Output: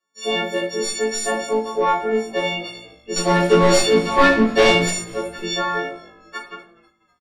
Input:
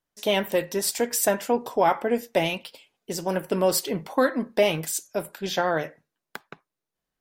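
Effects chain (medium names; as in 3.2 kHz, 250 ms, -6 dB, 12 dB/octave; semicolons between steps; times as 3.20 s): partials quantised in pitch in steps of 4 st; high-pass 210 Hz 24 dB/octave; hum notches 50/100/150/200/250/300/350 Hz; in parallel at -2 dB: compression, threshold -30 dBFS, peak gain reduction 19 dB; 3.16–4.89 s: on the sum: waveshaping leveller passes 3; saturation -6.5 dBFS, distortion -14 dB; distance through air 100 m; frequency-shifting echo 247 ms, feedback 52%, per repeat -53 Hz, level -22 dB; simulated room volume 47 m³, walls mixed, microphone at 1.1 m; trim -6 dB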